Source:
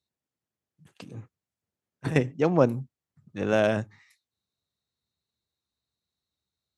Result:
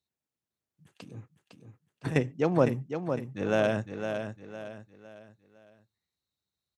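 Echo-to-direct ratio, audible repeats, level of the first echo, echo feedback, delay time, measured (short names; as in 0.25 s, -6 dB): -7.0 dB, 4, -7.5 dB, 38%, 0.507 s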